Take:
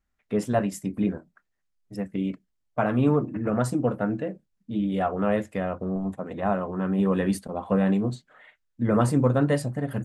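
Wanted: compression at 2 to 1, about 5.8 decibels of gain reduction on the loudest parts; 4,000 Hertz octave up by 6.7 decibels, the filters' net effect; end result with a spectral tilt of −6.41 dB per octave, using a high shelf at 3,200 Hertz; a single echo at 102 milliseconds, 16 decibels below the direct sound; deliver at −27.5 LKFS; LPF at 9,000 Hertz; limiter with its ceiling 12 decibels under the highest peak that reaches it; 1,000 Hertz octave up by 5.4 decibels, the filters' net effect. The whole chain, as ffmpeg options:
ffmpeg -i in.wav -af "lowpass=9000,equalizer=frequency=1000:width_type=o:gain=7,highshelf=frequency=3200:gain=5.5,equalizer=frequency=4000:width_type=o:gain=4.5,acompressor=threshold=-25dB:ratio=2,alimiter=limit=-22.5dB:level=0:latency=1,aecho=1:1:102:0.158,volume=5dB" out.wav

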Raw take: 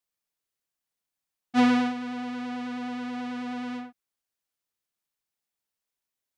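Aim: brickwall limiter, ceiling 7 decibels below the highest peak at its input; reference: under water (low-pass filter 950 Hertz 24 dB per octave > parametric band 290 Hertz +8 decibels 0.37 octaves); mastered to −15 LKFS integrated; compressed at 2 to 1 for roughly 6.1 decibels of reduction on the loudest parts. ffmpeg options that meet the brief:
ffmpeg -i in.wav -af "acompressor=threshold=-29dB:ratio=2,alimiter=level_in=3dB:limit=-24dB:level=0:latency=1,volume=-3dB,lowpass=frequency=950:width=0.5412,lowpass=frequency=950:width=1.3066,equalizer=frequency=290:width_type=o:width=0.37:gain=8,volume=16.5dB" out.wav

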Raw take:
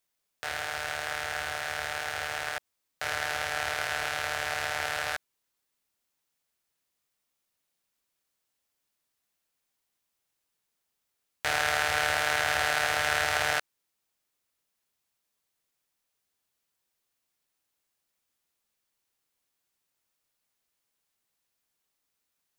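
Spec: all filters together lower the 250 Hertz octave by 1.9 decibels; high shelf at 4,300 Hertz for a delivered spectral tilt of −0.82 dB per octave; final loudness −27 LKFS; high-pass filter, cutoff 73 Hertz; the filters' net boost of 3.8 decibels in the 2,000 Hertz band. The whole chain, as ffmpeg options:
ffmpeg -i in.wav -af "highpass=73,equalizer=frequency=250:width_type=o:gain=-3,equalizer=frequency=2000:width_type=o:gain=6,highshelf=frequency=4300:gain=-6,volume=-0.5dB" out.wav

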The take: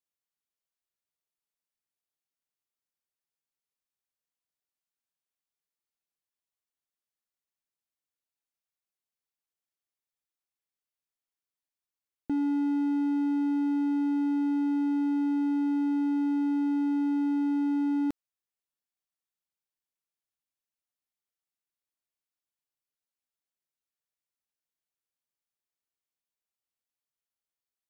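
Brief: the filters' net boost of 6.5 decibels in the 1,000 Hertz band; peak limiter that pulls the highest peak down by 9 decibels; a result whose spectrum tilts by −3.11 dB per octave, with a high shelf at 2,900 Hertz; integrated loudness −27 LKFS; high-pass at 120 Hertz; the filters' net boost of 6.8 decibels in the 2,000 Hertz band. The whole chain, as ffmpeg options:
ffmpeg -i in.wav -af "highpass=120,equalizer=frequency=1000:width_type=o:gain=6.5,equalizer=frequency=2000:width_type=o:gain=4,highshelf=frequency=2900:gain=7,volume=9dB,alimiter=limit=-23dB:level=0:latency=1" out.wav

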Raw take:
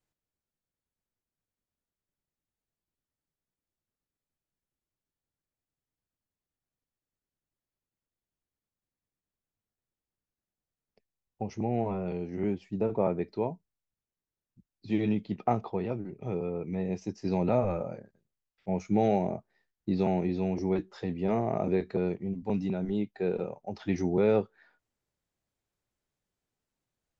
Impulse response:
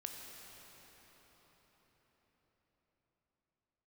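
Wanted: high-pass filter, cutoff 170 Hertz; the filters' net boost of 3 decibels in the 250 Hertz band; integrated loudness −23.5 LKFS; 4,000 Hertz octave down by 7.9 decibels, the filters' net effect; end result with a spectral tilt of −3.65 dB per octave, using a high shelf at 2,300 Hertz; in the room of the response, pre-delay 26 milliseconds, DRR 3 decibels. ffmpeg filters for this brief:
-filter_complex "[0:a]highpass=170,equalizer=frequency=250:width_type=o:gain=6,highshelf=frequency=2300:gain=-4,equalizer=frequency=4000:width_type=o:gain=-6.5,asplit=2[link_01][link_02];[1:a]atrim=start_sample=2205,adelay=26[link_03];[link_02][link_03]afir=irnorm=-1:irlink=0,volume=-1dB[link_04];[link_01][link_04]amix=inputs=2:normalize=0,volume=4.5dB"

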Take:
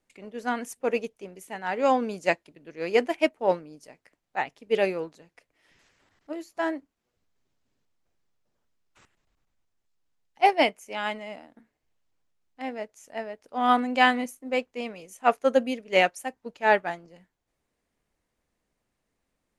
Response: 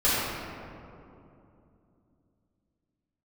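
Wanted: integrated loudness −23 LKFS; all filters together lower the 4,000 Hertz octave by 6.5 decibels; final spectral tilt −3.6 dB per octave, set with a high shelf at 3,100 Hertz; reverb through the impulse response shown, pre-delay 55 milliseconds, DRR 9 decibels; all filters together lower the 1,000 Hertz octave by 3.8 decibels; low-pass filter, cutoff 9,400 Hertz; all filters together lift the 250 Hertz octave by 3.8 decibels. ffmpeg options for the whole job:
-filter_complex "[0:a]lowpass=9400,equalizer=frequency=250:width_type=o:gain=4.5,equalizer=frequency=1000:width_type=o:gain=-5.5,highshelf=frequency=3100:gain=-3.5,equalizer=frequency=4000:width_type=o:gain=-7,asplit=2[link_01][link_02];[1:a]atrim=start_sample=2205,adelay=55[link_03];[link_02][link_03]afir=irnorm=-1:irlink=0,volume=-25dB[link_04];[link_01][link_04]amix=inputs=2:normalize=0,volume=4.5dB"

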